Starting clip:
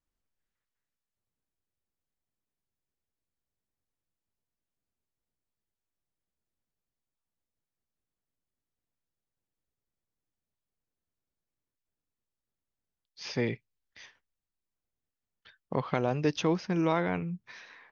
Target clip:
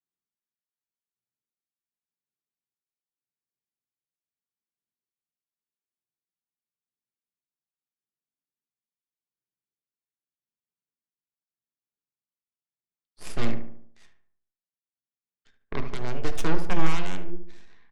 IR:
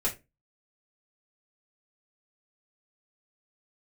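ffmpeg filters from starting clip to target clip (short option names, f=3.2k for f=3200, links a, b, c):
-filter_complex "[0:a]highpass=f=100:w=0.5412,highpass=f=100:w=1.3066,equalizer=f=640:w=5:g=-10,bandreject=f=50:t=h:w=6,bandreject=f=100:t=h:w=6,bandreject=f=150:t=h:w=6,bandreject=f=200:t=h:w=6,bandreject=f=250:t=h:w=6,alimiter=limit=-19dB:level=0:latency=1:release=128,aeval=exprs='0.112*(cos(1*acos(clip(val(0)/0.112,-1,1)))-cos(1*PI/2))+0.0282*(cos(3*acos(clip(val(0)/0.112,-1,1)))-cos(3*PI/2))+0.0316*(cos(6*acos(clip(val(0)/0.112,-1,1)))-cos(6*PI/2))':c=same,tremolo=f=0.84:d=0.48,asplit=2[a][b];[b]adelay=73,lowpass=f=1.7k:p=1,volume=-8dB,asplit=2[c][d];[d]adelay=73,lowpass=f=1.7k:p=1,volume=0.49,asplit=2[e][f];[f]adelay=73,lowpass=f=1.7k:p=1,volume=0.49,asplit=2[g][h];[h]adelay=73,lowpass=f=1.7k:p=1,volume=0.49,asplit=2[i][j];[j]adelay=73,lowpass=f=1.7k:p=1,volume=0.49,asplit=2[k][l];[l]adelay=73,lowpass=f=1.7k:p=1,volume=0.49[m];[a][c][e][g][i][k][m]amix=inputs=7:normalize=0,asplit=2[n][o];[1:a]atrim=start_sample=2205,lowshelf=f=400:g=10[p];[o][p]afir=irnorm=-1:irlink=0,volume=-15dB[q];[n][q]amix=inputs=2:normalize=0"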